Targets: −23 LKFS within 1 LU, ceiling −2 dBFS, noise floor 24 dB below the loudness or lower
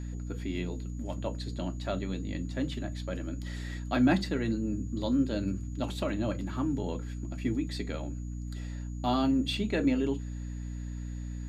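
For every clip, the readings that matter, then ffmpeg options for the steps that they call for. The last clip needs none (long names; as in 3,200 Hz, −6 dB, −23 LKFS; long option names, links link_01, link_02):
mains hum 60 Hz; hum harmonics up to 300 Hz; level of the hum −35 dBFS; interfering tone 6,800 Hz; level of the tone −59 dBFS; integrated loudness −32.5 LKFS; sample peak −13.0 dBFS; target loudness −23.0 LKFS
→ -af "bandreject=frequency=60:width_type=h:width=4,bandreject=frequency=120:width_type=h:width=4,bandreject=frequency=180:width_type=h:width=4,bandreject=frequency=240:width_type=h:width=4,bandreject=frequency=300:width_type=h:width=4"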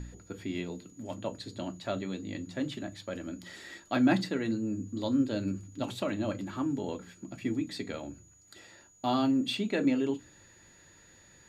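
mains hum none found; interfering tone 6,800 Hz; level of the tone −59 dBFS
→ -af "bandreject=frequency=6800:width=30"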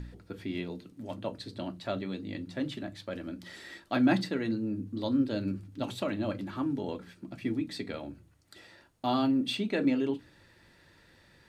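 interfering tone none found; integrated loudness −33.0 LKFS; sample peak −13.0 dBFS; target loudness −23.0 LKFS
→ -af "volume=10dB"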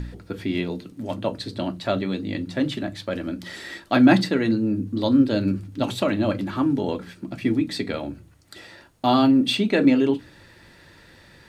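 integrated loudness −23.0 LKFS; sample peak −3.0 dBFS; background noise floor −51 dBFS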